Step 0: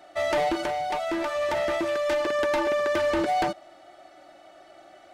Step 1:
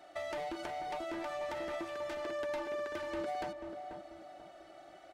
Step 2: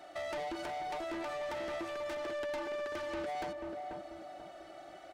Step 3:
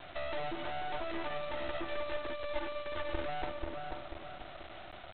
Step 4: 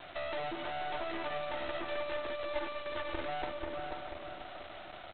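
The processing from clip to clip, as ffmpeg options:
ffmpeg -i in.wav -filter_complex "[0:a]acompressor=threshold=-33dB:ratio=6,asplit=2[link_01][link_02];[link_02]adelay=488,lowpass=frequency=930:poles=1,volume=-5dB,asplit=2[link_03][link_04];[link_04]adelay=488,lowpass=frequency=930:poles=1,volume=0.41,asplit=2[link_05][link_06];[link_06]adelay=488,lowpass=frequency=930:poles=1,volume=0.41,asplit=2[link_07][link_08];[link_08]adelay=488,lowpass=frequency=930:poles=1,volume=0.41,asplit=2[link_09][link_10];[link_10]adelay=488,lowpass=frequency=930:poles=1,volume=0.41[link_11];[link_03][link_05][link_07][link_09][link_11]amix=inputs=5:normalize=0[link_12];[link_01][link_12]amix=inputs=2:normalize=0,volume=-5.5dB" out.wav
ffmpeg -i in.wav -af "asoftclip=type=tanh:threshold=-39dB,volume=4dB" out.wav
ffmpeg -i in.wav -af "asubboost=boost=11:cutoff=59,aresample=8000,acrusher=bits=6:dc=4:mix=0:aa=0.000001,aresample=44100,volume=5.5dB" out.wav
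ffmpeg -i in.wav -filter_complex "[0:a]lowshelf=frequency=140:gain=-7.5,asplit=2[link_01][link_02];[link_02]aecho=0:1:646:0.299[link_03];[link_01][link_03]amix=inputs=2:normalize=0,volume=1dB" out.wav

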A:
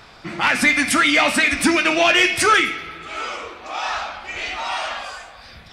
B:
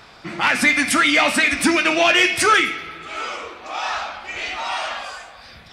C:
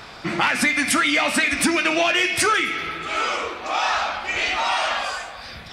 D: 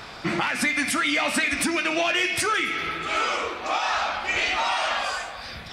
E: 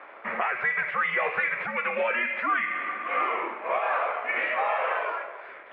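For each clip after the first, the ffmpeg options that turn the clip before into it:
ffmpeg -i in.wav -af "lowshelf=frequency=69:gain=-7" out.wav
ffmpeg -i in.wav -af "acompressor=threshold=-23dB:ratio=5,volume=5.5dB" out.wav
ffmpeg -i in.wav -af "alimiter=limit=-14dB:level=0:latency=1:release=462" out.wav
ffmpeg -i in.wav -af "aeval=exprs='sgn(val(0))*max(abs(val(0))-0.00501,0)':channel_layout=same,highpass=frequency=520:width_type=q:width=0.5412,highpass=frequency=520:width_type=q:width=1.307,lowpass=frequency=2400:width_type=q:width=0.5176,lowpass=frequency=2400:width_type=q:width=0.7071,lowpass=frequency=2400:width_type=q:width=1.932,afreqshift=-120" out.wav

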